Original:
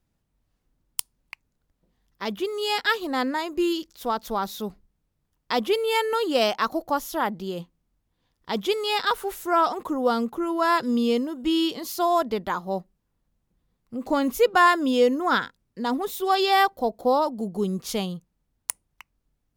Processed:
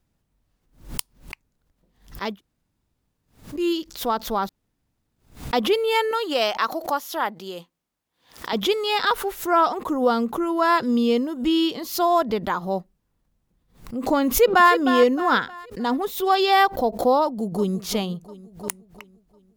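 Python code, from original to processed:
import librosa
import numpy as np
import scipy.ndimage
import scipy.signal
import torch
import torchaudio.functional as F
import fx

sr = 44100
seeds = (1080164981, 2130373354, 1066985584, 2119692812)

y = fx.highpass(x, sr, hz=630.0, slope=6, at=(6.11, 8.53))
y = fx.echo_throw(y, sr, start_s=14.28, length_s=0.44, ms=310, feedback_pct=40, wet_db=-9.0)
y = fx.echo_throw(y, sr, start_s=17.23, length_s=0.54, ms=350, feedback_pct=55, wet_db=-14.0)
y = fx.edit(y, sr, fx.room_tone_fill(start_s=2.33, length_s=1.27, crossfade_s=0.16),
    fx.room_tone_fill(start_s=4.49, length_s=1.04), tone=tone)
y = fx.dynamic_eq(y, sr, hz=9100.0, q=0.82, threshold_db=-48.0, ratio=4.0, max_db=-6)
y = fx.pre_swell(y, sr, db_per_s=140.0)
y = F.gain(torch.from_numpy(y), 2.5).numpy()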